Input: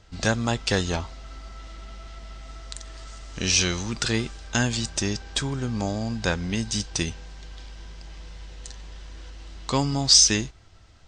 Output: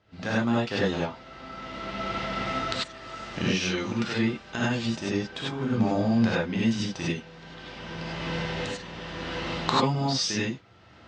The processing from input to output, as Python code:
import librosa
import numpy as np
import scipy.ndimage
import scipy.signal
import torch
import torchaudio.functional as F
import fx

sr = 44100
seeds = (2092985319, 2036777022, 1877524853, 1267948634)

y = fx.recorder_agc(x, sr, target_db=-11.5, rise_db_per_s=17.0, max_gain_db=30)
y = fx.bandpass_edges(y, sr, low_hz=130.0, high_hz=3000.0)
y = fx.rev_gated(y, sr, seeds[0], gate_ms=120, shape='rising', drr_db=-6.5)
y = y * 10.0 ** (-9.0 / 20.0)